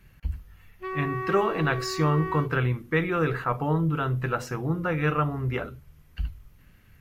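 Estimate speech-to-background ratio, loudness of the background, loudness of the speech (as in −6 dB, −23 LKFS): 7.0 dB, −34.0 LKFS, −27.0 LKFS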